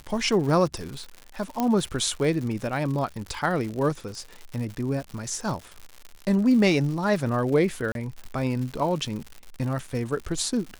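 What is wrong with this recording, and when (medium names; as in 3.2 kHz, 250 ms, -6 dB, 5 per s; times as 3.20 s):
crackle 150 per s -32 dBFS
1.60 s: pop -11 dBFS
7.92–7.95 s: dropout 32 ms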